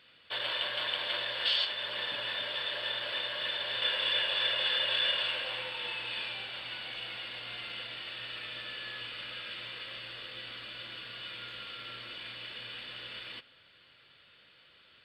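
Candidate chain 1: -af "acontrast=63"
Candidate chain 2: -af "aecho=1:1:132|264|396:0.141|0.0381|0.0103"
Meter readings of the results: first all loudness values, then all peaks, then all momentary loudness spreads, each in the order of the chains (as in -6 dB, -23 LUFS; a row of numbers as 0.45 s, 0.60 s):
-27.0 LUFS, -33.5 LUFS; -11.0 dBFS, -16.5 dBFS; 14 LU, 14 LU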